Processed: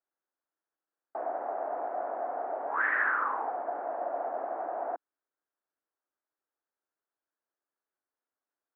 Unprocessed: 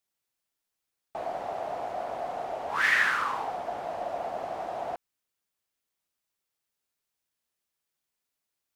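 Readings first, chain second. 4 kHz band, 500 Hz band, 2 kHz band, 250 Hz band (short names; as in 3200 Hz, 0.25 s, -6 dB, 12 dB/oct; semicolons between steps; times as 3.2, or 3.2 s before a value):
under -25 dB, 0.0 dB, -4.0 dB, -2.0 dB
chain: elliptic band-pass 280–1600 Hz, stop band 60 dB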